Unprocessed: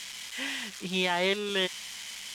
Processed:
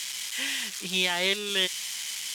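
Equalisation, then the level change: dynamic EQ 990 Hz, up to -4 dB, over -40 dBFS, Q 1; tilt +3 dB/oct; low shelf 250 Hz +6.5 dB; 0.0 dB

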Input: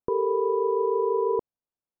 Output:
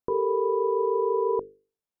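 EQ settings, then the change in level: notches 50/100/150/200/250/300/350/400/450/500 Hz; 0.0 dB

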